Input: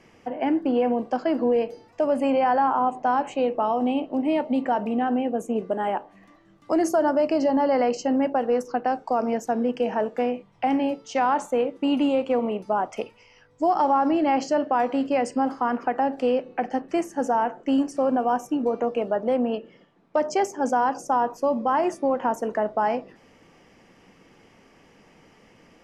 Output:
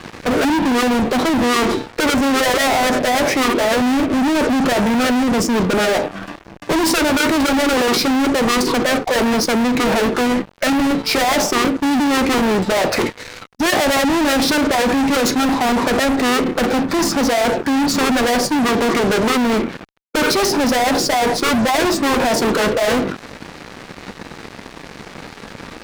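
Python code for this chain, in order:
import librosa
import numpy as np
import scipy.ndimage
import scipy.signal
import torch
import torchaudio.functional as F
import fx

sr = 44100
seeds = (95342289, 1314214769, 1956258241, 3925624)

y = fx.fuzz(x, sr, gain_db=44.0, gate_db=-53.0)
y = fx.formant_shift(y, sr, semitones=-4)
y = y * librosa.db_to_amplitude(-1.5)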